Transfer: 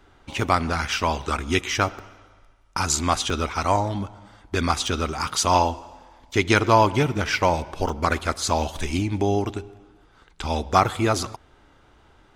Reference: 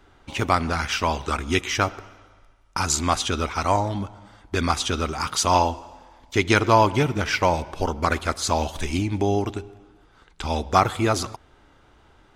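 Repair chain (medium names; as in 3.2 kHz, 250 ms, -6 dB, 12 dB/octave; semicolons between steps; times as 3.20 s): interpolate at 1.99/3.30/4.87/7.49/7.89/10.29 s, 3 ms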